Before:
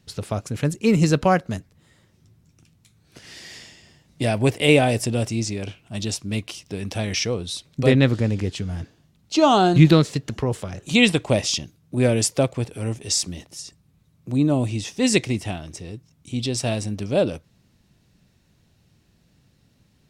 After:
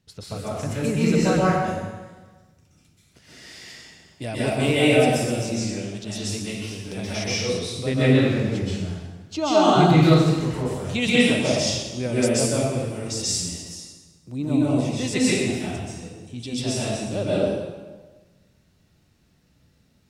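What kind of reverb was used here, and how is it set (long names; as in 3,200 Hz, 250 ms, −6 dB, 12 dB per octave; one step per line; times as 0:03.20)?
dense smooth reverb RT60 1.3 s, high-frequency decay 0.8×, pre-delay 115 ms, DRR −9 dB
level −9.5 dB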